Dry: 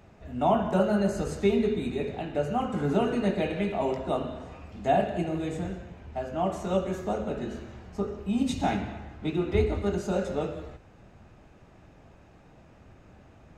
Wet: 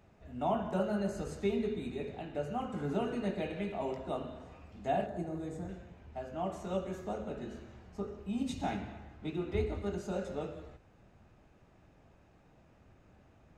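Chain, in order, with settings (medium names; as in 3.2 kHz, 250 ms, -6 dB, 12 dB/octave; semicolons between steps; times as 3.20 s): 5.06–5.69 s: peaking EQ 2.8 kHz -13.5 dB 0.85 oct; trim -8.5 dB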